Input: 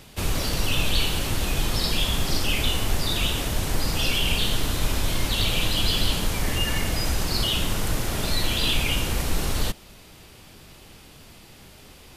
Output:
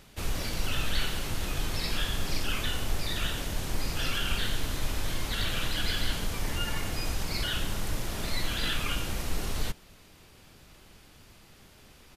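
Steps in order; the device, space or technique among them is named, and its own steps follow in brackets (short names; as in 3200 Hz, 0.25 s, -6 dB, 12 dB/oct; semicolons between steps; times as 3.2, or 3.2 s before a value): octave pedal (harmoniser -12 st -4 dB); gain -8.5 dB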